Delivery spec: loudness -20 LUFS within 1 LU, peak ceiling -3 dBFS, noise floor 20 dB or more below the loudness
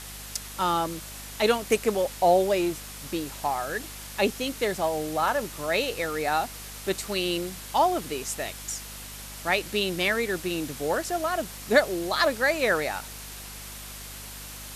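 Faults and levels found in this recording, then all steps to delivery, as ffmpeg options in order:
hum 50 Hz; harmonics up to 250 Hz; hum level -44 dBFS; noise floor -41 dBFS; noise floor target -47 dBFS; loudness -27.0 LUFS; peak -6.0 dBFS; loudness target -20.0 LUFS
-> -af "bandreject=f=50:t=h:w=4,bandreject=f=100:t=h:w=4,bandreject=f=150:t=h:w=4,bandreject=f=200:t=h:w=4,bandreject=f=250:t=h:w=4"
-af "afftdn=nr=6:nf=-41"
-af "volume=7dB,alimiter=limit=-3dB:level=0:latency=1"

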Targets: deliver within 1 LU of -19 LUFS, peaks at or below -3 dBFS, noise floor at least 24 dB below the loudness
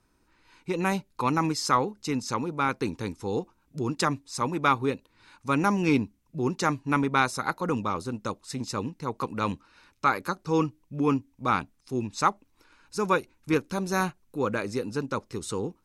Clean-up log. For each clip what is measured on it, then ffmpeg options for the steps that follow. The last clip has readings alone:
loudness -28.5 LUFS; peak -8.5 dBFS; loudness target -19.0 LUFS
-> -af "volume=9.5dB,alimiter=limit=-3dB:level=0:latency=1"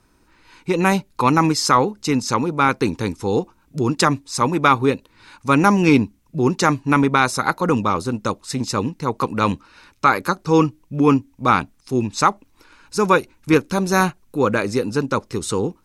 loudness -19.5 LUFS; peak -3.0 dBFS; noise floor -58 dBFS

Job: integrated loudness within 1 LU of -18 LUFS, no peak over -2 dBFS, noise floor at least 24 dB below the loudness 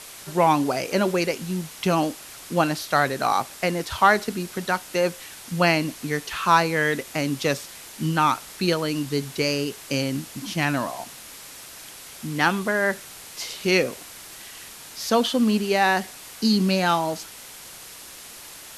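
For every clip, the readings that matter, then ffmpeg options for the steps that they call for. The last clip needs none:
noise floor -42 dBFS; noise floor target -48 dBFS; loudness -23.5 LUFS; peak -3.5 dBFS; loudness target -18.0 LUFS
-> -af "afftdn=nr=6:nf=-42"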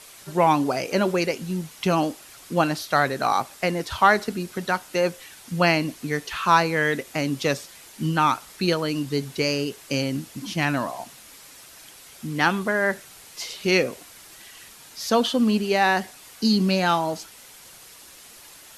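noise floor -47 dBFS; noise floor target -48 dBFS
-> -af "afftdn=nr=6:nf=-47"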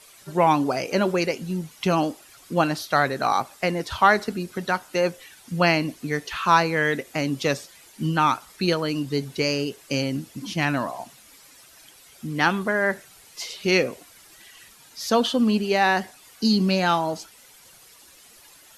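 noise floor -51 dBFS; loudness -23.5 LUFS; peak -3.5 dBFS; loudness target -18.0 LUFS
-> -af "volume=5.5dB,alimiter=limit=-2dB:level=0:latency=1"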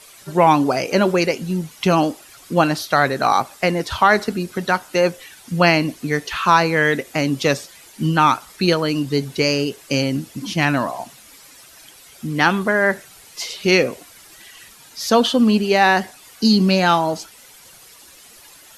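loudness -18.5 LUFS; peak -2.0 dBFS; noise floor -46 dBFS

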